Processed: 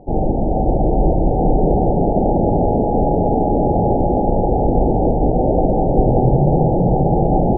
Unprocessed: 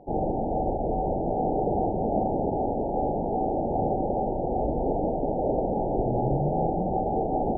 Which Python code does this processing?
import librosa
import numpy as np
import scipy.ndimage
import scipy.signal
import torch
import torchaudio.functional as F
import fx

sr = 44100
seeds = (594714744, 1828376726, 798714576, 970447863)

p1 = fx.tilt_eq(x, sr, slope=-2.5)
p2 = p1 + fx.echo_heads(p1, sr, ms=194, heads='first and third', feedback_pct=66, wet_db=-6.0, dry=0)
y = F.gain(torch.from_numpy(p2), 4.0).numpy()